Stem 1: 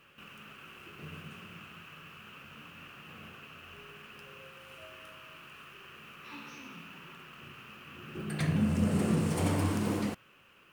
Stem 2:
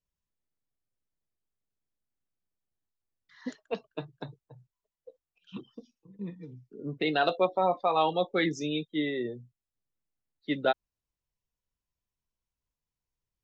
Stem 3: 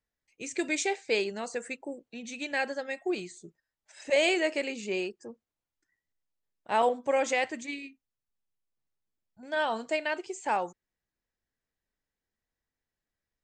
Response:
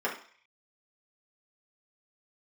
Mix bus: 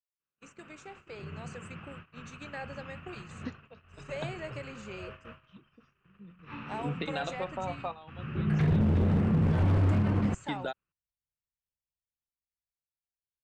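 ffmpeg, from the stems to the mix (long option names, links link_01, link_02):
-filter_complex "[0:a]lowpass=2000,adelay=200,volume=-2.5dB[link_01];[1:a]highpass=frequency=140:poles=1,acompressor=threshold=-36dB:ratio=4,volume=-4.5dB[link_02];[2:a]acrossover=split=660|1400[link_03][link_04][link_05];[link_03]acompressor=threshold=-37dB:ratio=4[link_06];[link_04]acompressor=threshold=-33dB:ratio=4[link_07];[link_05]acompressor=threshold=-44dB:ratio=4[link_08];[link_06][link_07][link_08]amix=inputs=3:normalize=0,volume=-13.5dB,asplit=2[link_09][link_10];[link_10]apad=whole_len=592333[link_11];[link_02][link_11]sidechaingate=range=-16dB:threshold=-60dB:ratio=16:detection=peak[link_12];[link_01][link_09]amix=inputs=2:normalize=0,agate=range=-34dB:threshold=-52dB:ratio=16:detection=peak,alimiter=level_in=6dB:limit=-24dB:level=0:latency=1:release=41,volume=-6dB,volume=0dB[link_13];[link_12][link_13]amix=inputs=2:normalize=0,asubboost=boost=4.5:cutoff=150,dynaudnorm=framelen=140:gausssize=21:maxgain=7.5dB,aeval=exprs='0.106*(abs(mod(val(0)/0.106+3,4)-2)-1)':channel_layout=same"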